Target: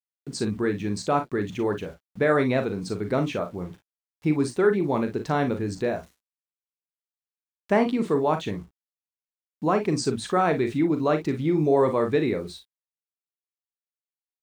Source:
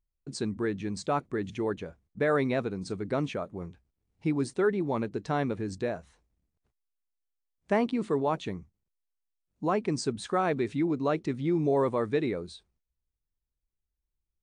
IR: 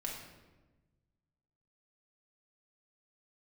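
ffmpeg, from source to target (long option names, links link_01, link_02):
-af "aeval=exprs='val(0)*gte(abs(val(0)),0.00188)':channel_layout=same,aecho=1:1:39|56:0.376|0.211,volume=4.5dB"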